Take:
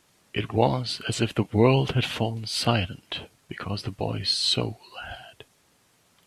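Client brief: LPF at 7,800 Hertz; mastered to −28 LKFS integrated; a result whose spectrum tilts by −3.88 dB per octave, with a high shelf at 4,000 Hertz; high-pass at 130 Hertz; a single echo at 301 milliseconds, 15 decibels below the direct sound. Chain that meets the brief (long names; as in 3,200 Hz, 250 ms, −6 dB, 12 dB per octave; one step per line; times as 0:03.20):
high-pass filter 130 Hz
low-pass filter 7,800 Hz
high-shelf EQ 4,000 Hz +8.5 dB
single-tap delay 301 ms −15 dB
level −3.5 dB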